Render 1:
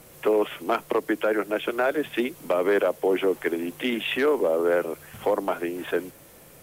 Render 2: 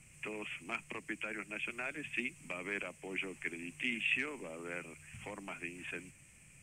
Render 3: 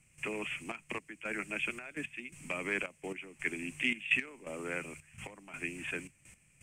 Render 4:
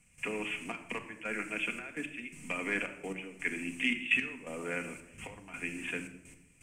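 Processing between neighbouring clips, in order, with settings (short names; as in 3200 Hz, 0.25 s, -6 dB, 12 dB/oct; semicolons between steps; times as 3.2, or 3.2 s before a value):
EQ curve 130 Hz 0 dB, 210 Hz -5 dB, 470 Hz -21 dB, 1500 Hz -10 dB, 2500 Hz +7 dB, 3700 Hz -16 dB, 8400 Hz +5 dB, 12000 Hz -21 dB; gain -6 dB
step gate "..xxxxxx..x." 168 bpm -12 dB; gain +5 dB
shoebox room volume 2800 m³, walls furnished, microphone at 1.8 m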